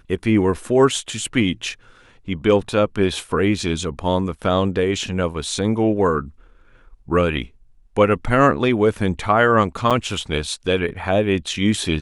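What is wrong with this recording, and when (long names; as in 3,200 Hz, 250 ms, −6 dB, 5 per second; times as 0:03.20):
0:09.90–0:09.91: drop-out 6.8 ms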